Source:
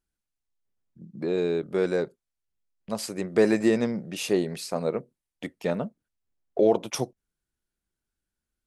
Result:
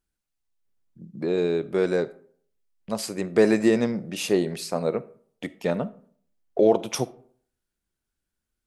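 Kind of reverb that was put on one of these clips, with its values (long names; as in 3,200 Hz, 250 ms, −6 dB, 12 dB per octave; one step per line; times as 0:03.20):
comb and all-pass reverb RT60 0.56 s, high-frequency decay 0.55×, pre-delay 5 ms, DRR 17 dB
level +2 dB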